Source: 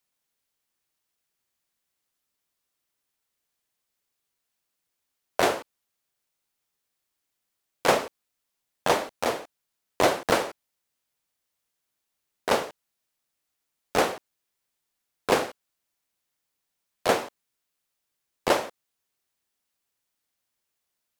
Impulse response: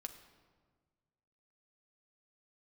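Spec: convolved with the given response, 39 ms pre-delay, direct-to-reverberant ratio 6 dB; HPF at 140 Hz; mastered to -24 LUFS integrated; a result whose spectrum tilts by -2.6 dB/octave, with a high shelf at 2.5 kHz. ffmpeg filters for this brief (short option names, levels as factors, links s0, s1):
-filter_complex "[0:a]highpass=140,highshelf=f=2500:g=7,asplit=2[s0][s1];[1:a]atrim=start_sample=2205,adelay=39[s2];[s1][s2]afir=irnorm=-1:irlink=0,volume=0.794[s3];[s0][s3]amix=inputs=2:normalize=0,volume=1.06"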